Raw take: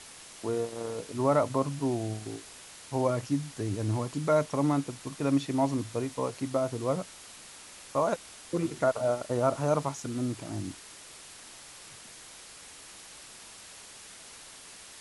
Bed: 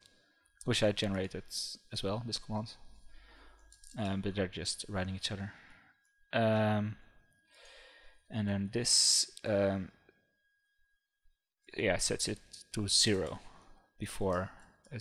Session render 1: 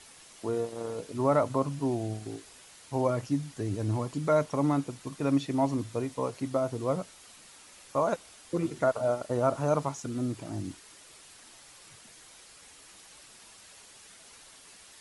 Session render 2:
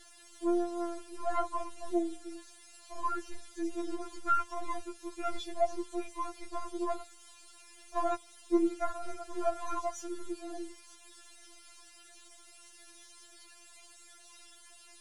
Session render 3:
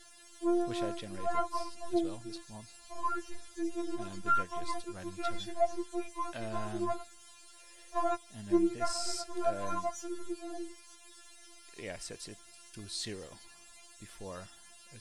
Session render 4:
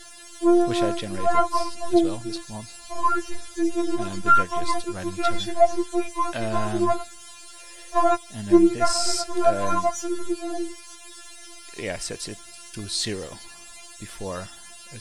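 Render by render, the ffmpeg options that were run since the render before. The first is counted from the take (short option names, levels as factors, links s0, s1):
-af "afftdn=nr=6:nf=-49"
-af "aeval=exprs='if(lt(val(0),0),0.708*val(0),val(0))':c=same,afftfilt=real='re*4*eq(mod(b,16),0)':imag='im*4*eq(mod(b,16),0)':win_size=2048:overlap=0.75"
-filter_complex "[1:a]volume=0.266[s0];[0:a][s0]amix=inputs=2:normalize=0"
-af "volume=3.98"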